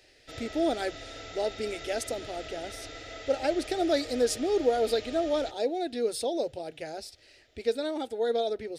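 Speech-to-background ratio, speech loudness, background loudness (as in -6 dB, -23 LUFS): 12.0 dB, -30.5 LUFS, -42.5 LUFS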